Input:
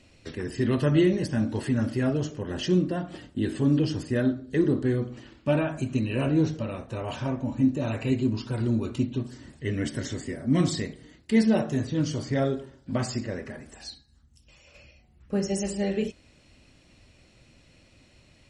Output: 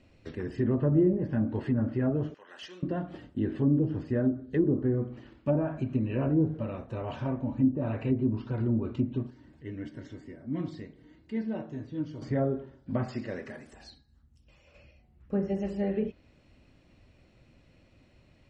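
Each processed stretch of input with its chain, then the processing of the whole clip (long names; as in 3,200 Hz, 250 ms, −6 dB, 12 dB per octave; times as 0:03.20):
0:02.34–0:02.83: high-pass filter 1,300 Hz + gain into a clipping stage and back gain 30 dB
0:09.30–0:12.22: low-pass filter 6,700 Hz + upward compression, threshold −36 dBFS + tuned comb filter 310 Hz, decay 0.16 s, harmonics odd, mix 70%
0:13.08–0:13.73: high-pass filter 180 Hz 6 dB per octave + high-shelf EQ 2,800 Hz +11.5 dB
whole clip: treble cut that deepens with the level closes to 730 Hz, closed at −19 dBFS; low-pass filter 1,600 Hz 6 dB per octave; level −2 dB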